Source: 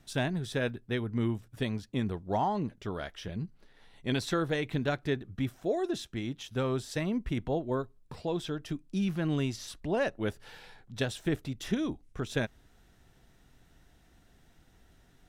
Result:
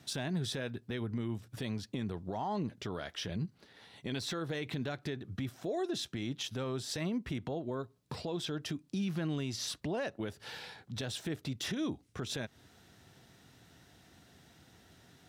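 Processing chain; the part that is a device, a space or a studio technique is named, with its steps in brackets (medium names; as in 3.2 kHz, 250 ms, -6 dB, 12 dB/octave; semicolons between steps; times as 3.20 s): broadcast voice chain (high-pass 81 Hz 24 dB/octave; de-esser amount 95%; compression, threshold -34 dBFS, peak gain reduction 9.5 dB; peaking EQ 4.5 kHz +4.5 dB 1 oct; peak limiter -31.5 dBFS, peak gain reduction 9.5 dB); trim +4 dB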